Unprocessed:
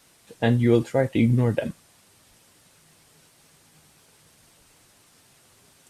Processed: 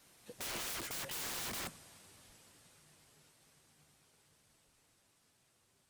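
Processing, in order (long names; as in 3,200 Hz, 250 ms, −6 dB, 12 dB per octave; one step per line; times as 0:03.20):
source passing by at 0:01.34, 14 m/s, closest 6.9 metres
wrap-around overflow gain 38.5 dB
level +2 dB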